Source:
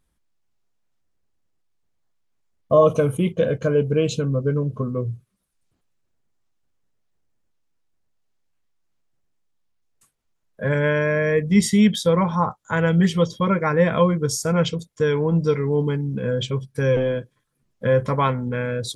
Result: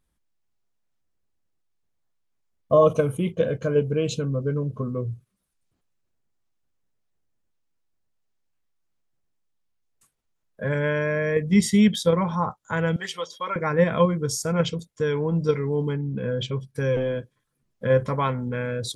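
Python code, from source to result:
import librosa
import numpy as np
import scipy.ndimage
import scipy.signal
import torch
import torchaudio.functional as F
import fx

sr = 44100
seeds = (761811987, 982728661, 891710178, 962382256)

p1 = fx.highpass(x, sr, hz=770.0, slope=12, at=(12.96, 13.56))
p2 = fx.level_steps(p1, sr, step_db=16)
p3 = p1 + F.gain(torch.from_numpy(p2), -2.0).numpy()
p4 = fx.lowpass(p3, sr, hz=fx.line((15.93, 3400.0), (16.59, 6900.0)), slope=12, at=(15.93, 16.59), fade=0.02)
y = F.gain(torch.from_numpy(p4), -5.5).numpy()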